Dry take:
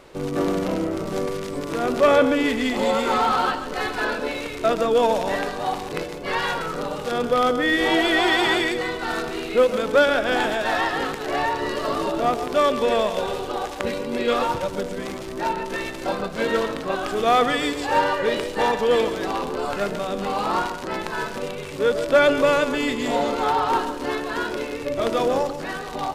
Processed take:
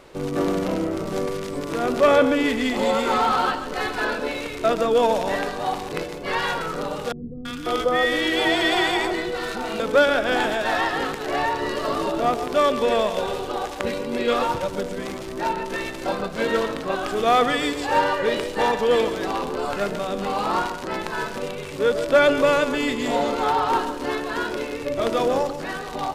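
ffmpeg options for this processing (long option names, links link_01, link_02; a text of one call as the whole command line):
ffmpeg -i in.wav -filter_complex "[0:a]asettb=1/sr,asplit=3[link_01][link_02][link_03];[link_01]atrim=end=7.124[link_04];[link_02]atrim=start=7.12:end=9.8,asetpts=PTS-STARTPTS,afade=type=in:duration=0.004:curve=qsin,afade=type=out:start_time=2.676:duration=0.004:curve=qsin,acrossover=split=260|1300[link_05][link_06][link_07];[link_07]adelay=330[link_08];[link_06]adelay=540[link_09];[link_05][link_09][link_08]amix=inputs=3:normalize=0,atrim=end_sample=118188[link_10];[link_03]atrim=start=9.796[link_11];[link_04][link_10]acrossfade=duration=0.004:curve1=hsin:curve2=qsin[link_12];[link_12][link_11]acrossfade=duration=0.004:curve1=qsin:curve2=hsin" out.wav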